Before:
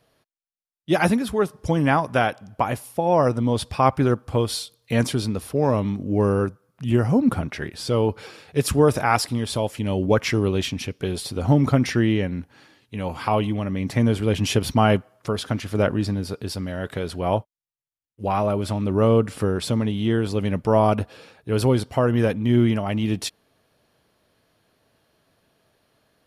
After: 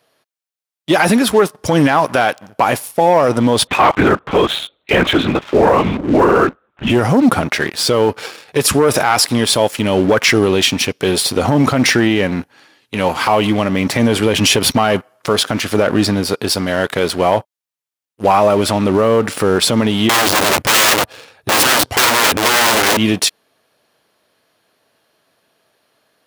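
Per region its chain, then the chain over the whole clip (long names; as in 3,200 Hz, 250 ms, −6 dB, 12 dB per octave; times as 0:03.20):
0:03.67–0:06.91: parametric band 1,700 Hz +5 dB 1.6 octaves + linear-prediction vocoder at 8 kHz whisper
0:20.09–0:22.97: low shelf with overshoot 140 Hz +8 dB, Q 1.5 + wrap-around overflow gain 19.5 dB
whole clip: leveller curve on the samples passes 2; high-pass filter 460 Hz 6 dB per octave; boost into a limiter +11 dB; level −1.5 dB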